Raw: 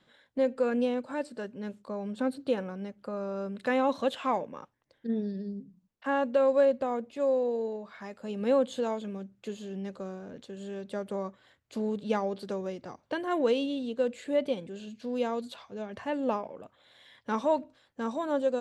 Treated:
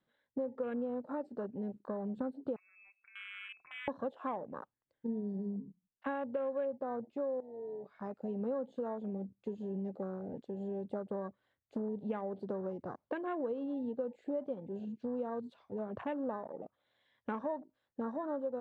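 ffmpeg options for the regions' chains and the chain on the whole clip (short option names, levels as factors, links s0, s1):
-filter_complex "[0:a]asettb=1/sr,asplit=3[s0][s1][s2];[s0]atrim=end=2.564[s3];[s1]atrim=start=2.56:end=3.88,asetpts=PTS-STARTPTS,afade=t=in:d=0.004:c=qsin,afade=t=out:st=1.316:d=0.004:c=qsin,acompressor=threshold=0.0126:ratio=20:attack=3.2:release=140:knee=1:detection=peak,lowpass=f=2400:t=q:w=0.5098,lowpass=f=2400:t=q:w=0.6013,lowpass=f=2400:t=q:w=0.9,lowpass=f=2400:t=q:w=2.563,afreqshift=-2800[s4];[s2]atrim=start=3.876[s5];[s3][s4]acrossfade=d=0.004:c1=hsin:c2=qsin[s6];[s6][s5]acrossfade=d=0.004:c1=qsin:c2=hsin,asettb=1/sr,asplit=3[s7][s8][s9];[s7]atrim=end=7.404[s10];[s8]atrim=start=7.4:end=7.92,asetpts=PTS-STARTPTS,afade=t=in:d=0.004:c=qsin,afade=t=out:st=0.516:d=0.004:c=qsin,equalizer=f=83:t=o:w=2.6:g=5.5,aecho=1:1:7.1:0.58,atrim=end_sample=22932,acompressor=threshold=0.00891:ratio=12:attack=3.2:release=140:knee=1:detection=peak[s11];[s9]atrim=start=7.916[s12];[s10][s11]acrossfade=d=0.004:c1=hsin:c2=qsin[s13];[s13][s12]acrossfade=d=0.004:c1=qsin:c2=hsin,lowpass=f=2000:p=1,afwtdn=0.00891,acompressor=threshold=0.0141:ratio=5,volume=1.26"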